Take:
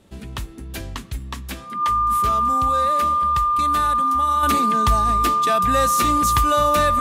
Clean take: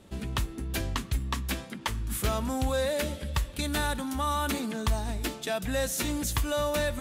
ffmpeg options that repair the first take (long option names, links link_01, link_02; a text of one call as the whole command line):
ffmpeg -i in.wav -af "bandreject=frequency=1200:width=30,asetnsamples=nb_out_samples=441:pad=0,asendcmd='4.43 volume volume -7dB',volume=0dB" out.wav